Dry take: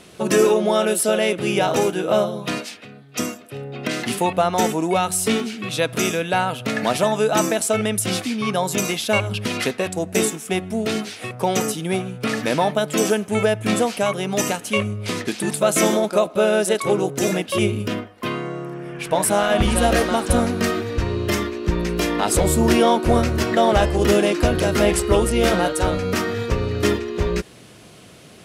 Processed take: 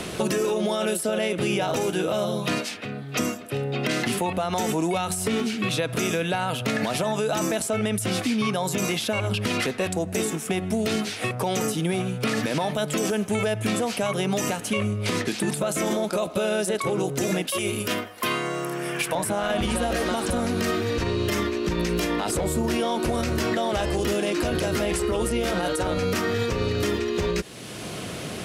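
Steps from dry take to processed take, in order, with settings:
0:17.47–0:19.15: RIAA equalisation recording
brickwall limiter −16.5 dBFS, peak gain reduction 11 dB
multiband upward and downward compressor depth 70%

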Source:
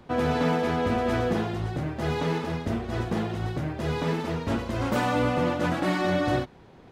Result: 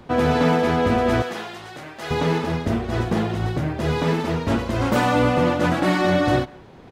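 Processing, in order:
0:01.22–0:02.11: high-pass filter 1,500 Hz 6 dB per octave
far-end echo of a speakerphone 170 ms, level −23 dB
level +6 dB

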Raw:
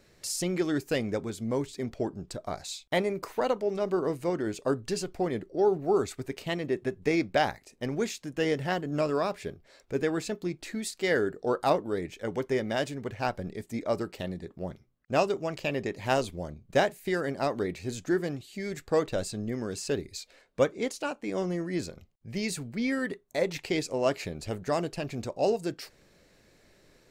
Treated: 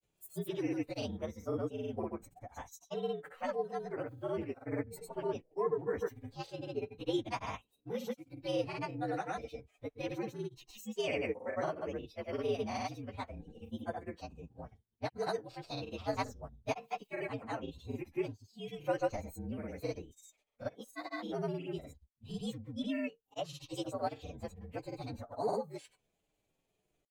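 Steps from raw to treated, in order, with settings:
partials spread apart or drawn together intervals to 119%
granular cloud 100 ms, spray 100 ms, pitch spread up and down by 0 semitones
noise reduction from a noise print of the clip's start 11 dB
level −4 dB

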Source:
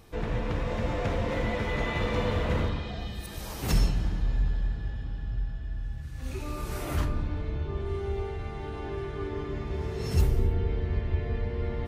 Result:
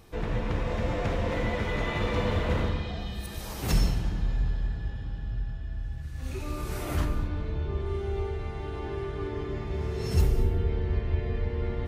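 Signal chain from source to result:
reverb whose tail is shaped and stops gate 250 ms flat, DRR 10.5 dB

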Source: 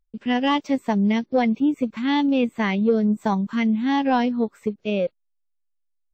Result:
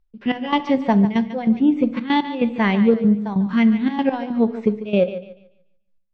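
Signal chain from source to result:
low-pass filter 5,200 Hz 24 dB per octave
high-shelf EQ 3,900 Hz −6 dB
in parallel at −3 dB: speech leveller 0.5 s
on the sum: gate pattern "x.x..xxxx" 143 BPM −12 dB
feedback echo with a high-pass in the loop 145 ms, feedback 32%, high-pass 380 Hz, level −12 dB
on a send at −12 dB: convolution reverb RT60 0.60 s, pre-delay 6 ms

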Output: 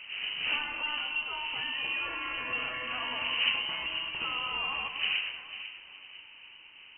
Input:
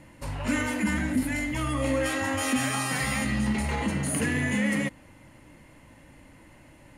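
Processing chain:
wind on the microphone 510 Hz −32 dBFS
voice inversion scrambler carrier 3,000 Hz
delay that swaps between a low-pass and a high-pass 248 ms, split 1,700 Hz, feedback 55%, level −7.5 dB
level −8 dB

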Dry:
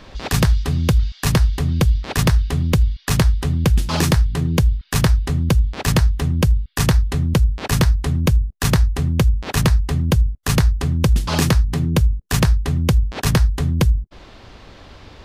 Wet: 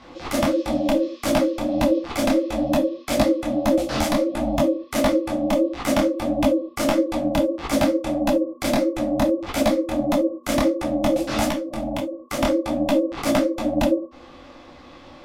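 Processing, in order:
parametric band 110 Hz +5 dB 0.35 octaves
frequency shifter +49 Hz
hollow resonant body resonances 400/730/1,600/3,000 Hz, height 9 dB, ringing for 40 ms
steady tone 680 Hz −40 dBFS
ring modulation 430 Hz
0:11.50–0:12.39: downward compressor 6 to 1, threshold −20 dBFS, peak gain reduction 8.5 dB
reverb whose tail is shaped and stops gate 90 ms falling, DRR 6 dB
micro pitch shift up and down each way 54 cents

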